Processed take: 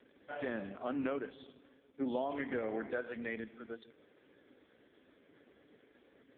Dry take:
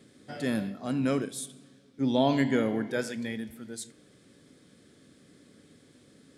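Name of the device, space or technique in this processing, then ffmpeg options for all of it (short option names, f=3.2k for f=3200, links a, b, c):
voicemail: -af "highpass=410,lowpass=2.7k,acompressor=threshold=-34dB:ratio=10,volume=2.5dB" -ar 8000 -c:a libopencore_amrnb -b:a 4750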